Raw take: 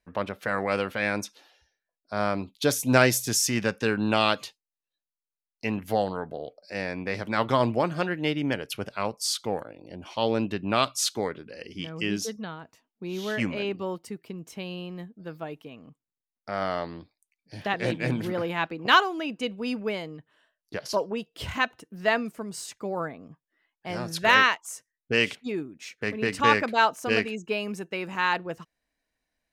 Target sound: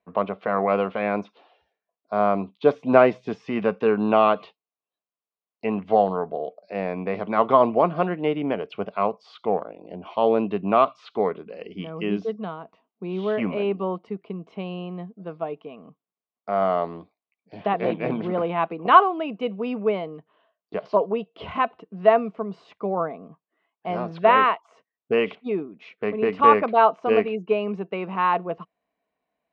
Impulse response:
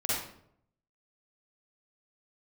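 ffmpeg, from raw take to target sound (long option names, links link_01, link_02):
-filter_complex "[0:a]acrossover=split=2500[link_01][link_02];[link_02]acompressor=threshold=-38dB:ratio=4:attack=1:release=60[link_03];[link_01][link_03]amix=inputs=2:normalize=0,highpass=110,equalizer=frequency=120:width_type=q:width=4:gain=-9,equalizer=frequency=190:width_type=q:width=4:gain=7,equalizer=frequency=430:width_type=q:width=4:gain=8,equalizer=frequency=690:width_type=q:width=4:gain=10,equalizer=frequency=1100:width_type=q:width=4:gain=9,equalizer=frequency=1700:width_type=q:width=4:gain=-8,lowpass=frequency=3200:width=0.5412,lowpass=frequency=3200:width=1.3066"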